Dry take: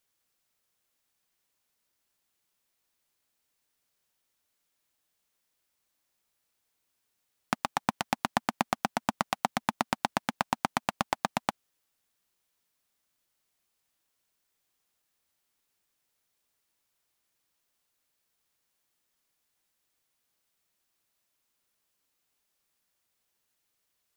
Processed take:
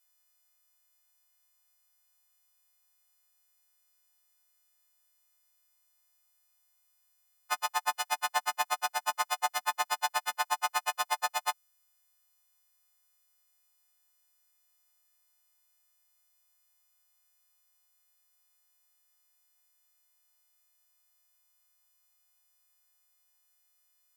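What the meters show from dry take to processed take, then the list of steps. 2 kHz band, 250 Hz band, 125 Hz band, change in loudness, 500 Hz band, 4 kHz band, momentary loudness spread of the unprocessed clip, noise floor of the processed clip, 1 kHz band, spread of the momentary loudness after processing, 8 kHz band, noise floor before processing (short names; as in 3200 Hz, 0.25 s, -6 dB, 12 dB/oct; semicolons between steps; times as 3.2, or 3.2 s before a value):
+1.0 dB, under -25 dB, under -35 dB, +0.5 dB, -6.0 dB, +2.5 dB, 2 LU, -72 dBFS, 0.0 dB, 3 LU, +6.0 dB, -79 dBFS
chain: frequency quantiser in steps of 3 st; added harmonics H 6 -19 dB, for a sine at -9.5 dBFS; resonant high-pass 800 Hz, resonance Q 1.6; gain -6.5 dB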